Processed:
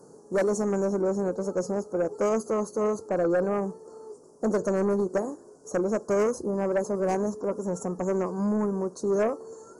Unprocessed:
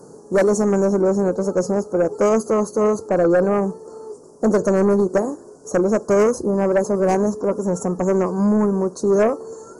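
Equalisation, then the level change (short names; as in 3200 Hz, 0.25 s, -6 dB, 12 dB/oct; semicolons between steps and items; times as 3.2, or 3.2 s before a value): low shelf 170 Hz -3 dB; -8.0 dB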